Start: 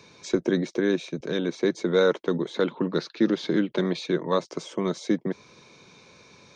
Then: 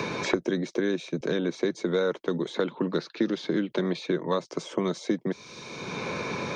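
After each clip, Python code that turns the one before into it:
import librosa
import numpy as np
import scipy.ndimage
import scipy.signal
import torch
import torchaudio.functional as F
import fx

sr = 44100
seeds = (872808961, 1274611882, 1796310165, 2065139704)

y = fx.band_squash(x, sr, depth_pct=100)
y = F.gain(torch.from_numpy(y), -3.0).numpy()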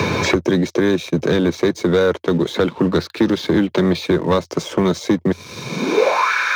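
y = fx.leveller(x, sr, passes=2)
y = fx.filter_sweep_highpass(y, sr, from_hz=85.0, to_hz=1500.0, start_s=5.57, end_s=6.32, q=6.3)
y = F.gain(torch.from_numpy(y), 4.0).numpy()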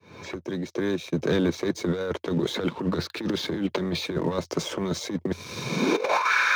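y = fx.fade_in_head(x, sr, length_s=2.06)
y = fx.over_compress(y, sr, threshold_db=-18.0, ratio=-0.5)
y = F.gain(torch.from_numpy(y), -5.5).numpy()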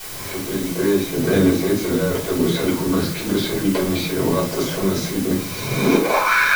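y = fx.quant_dither(x, sr, seeds[0], bits=6, dither='triangular')
y = fx.room_shoebox(y, sr, seeds[1], volume_m3=230.0, walls='furnished', distance_m=4.9)
y = F.gain(torch.from_numpy(y), -4.0).numpy()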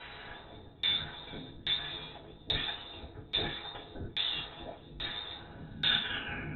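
y = fx.freq_invert(x, sr, carrier_hz=3900)
y = fx.filter_lfo_lowpass(y, sr, shape='saw_down', hz=1.2, low_hz=280.0, high_hz=2900.0, q=0.78)
y = F.gain(torch.from_numpy(y), -6.0).numpy()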